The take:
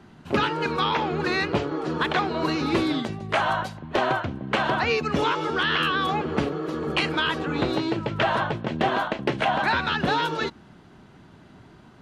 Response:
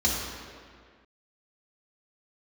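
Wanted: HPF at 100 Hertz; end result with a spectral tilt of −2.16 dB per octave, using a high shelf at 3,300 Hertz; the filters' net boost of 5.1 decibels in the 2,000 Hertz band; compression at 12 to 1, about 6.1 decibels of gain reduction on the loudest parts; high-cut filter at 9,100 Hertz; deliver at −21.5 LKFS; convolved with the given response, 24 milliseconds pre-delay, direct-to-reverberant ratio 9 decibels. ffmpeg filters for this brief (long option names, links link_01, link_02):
-filter_complex "[0:a]highpass=100,lowpass=9100,equalizer=frequency=2000:width_type=o:gain=4.5,highshelf=frequency=3300:gain=7.5,acompressor=threshold=-22dB:ratio=12,asplit=2[link_01][link_02];[1:a]atrim=start_sample=2205,adelay=24[link_03];[link_02][link_03]afir=irnorm=-1:irlink=0,volume=-21dB[link_04];[link_01][link_04]amix=inputs=2:normalize=0,volume=4.5dB"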